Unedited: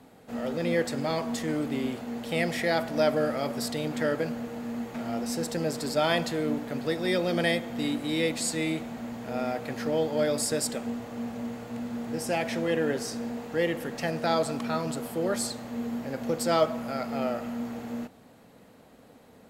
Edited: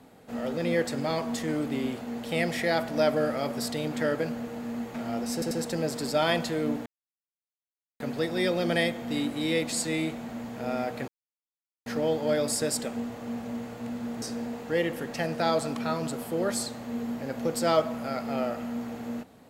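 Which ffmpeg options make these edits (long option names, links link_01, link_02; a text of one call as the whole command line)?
ffmpeg -i in.wav -filter_complex "[0:a]asplit=6[link_01][link_02][link_03][link_04][link_05][link_06];[link_01]atrim=end=5.422[link_07];[link_02]atrim=start=5.328:end=5.422[link_08];[link_03]atrim=start=5.328:end=6.68,asetpts=PTS-STARTPTS,afade=type=out:start_time=1.348:duration=0.004:curve=hsin,apad=pad_dur=1.14[link_09];[link_04]atrim=start=6.68:end=9.76,asetpts=PTS-STARTPTS,afade=type=in:duration=0.004:curve=hsin,afade=type=out:start_time=3.076:duration=0.004:curve=hsin,apad=pad_dur=0.78[link_10];[link_05]atrim=start=9.76:end=12.122,asetpts=PTS-STARTPTS,afade=type=in:duration=0.004:curve=hsin[link_11];[link_06]atrim=start=13.058[link_12];[link_07][link_08]acrossfade=duration=0.004:curve1=hsin:curve2=hsin[link_13];[link_09][link_10][link_11]concat=n=3:v=0:a=1[link_14];[link_13][link_14]acrossfade=duration=0.004:curve1=hsin:curve2=hsin[link_15];[link_15][link_12]acrossfade=duration=0.004:curve1=hsin:curve2=hsin" out.wav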